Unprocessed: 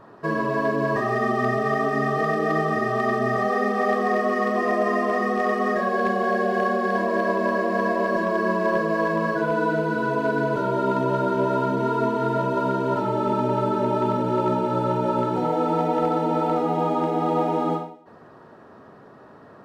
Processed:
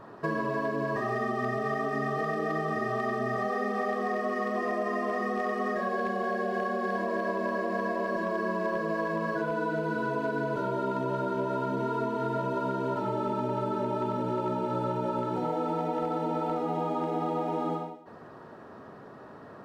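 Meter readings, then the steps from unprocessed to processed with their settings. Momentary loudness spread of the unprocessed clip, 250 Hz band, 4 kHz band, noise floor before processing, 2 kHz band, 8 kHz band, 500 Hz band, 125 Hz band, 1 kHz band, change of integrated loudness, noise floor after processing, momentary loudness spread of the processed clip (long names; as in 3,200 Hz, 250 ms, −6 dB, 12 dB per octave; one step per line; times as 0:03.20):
1 LU, −7.5 dB, −7.5 dB, −48 dBFS, −7.5 dB, can't be measured, −7.5 dB, −7.5 dB, −7.5 dB, −7.5 dB, −48 dBFS, 1 LU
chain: downward compressor, threshold −27 dBFS, peak gain reduction 9.5 dB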